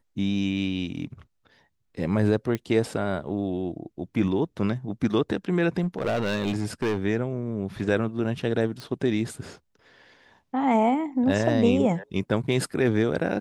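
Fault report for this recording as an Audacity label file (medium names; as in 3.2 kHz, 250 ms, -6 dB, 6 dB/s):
2.550000	2.550000	pop -15 dBFS
5.820000	6.980000	clipped -21.5 dBFS
8.800000	8.800000	pop -23 dBFS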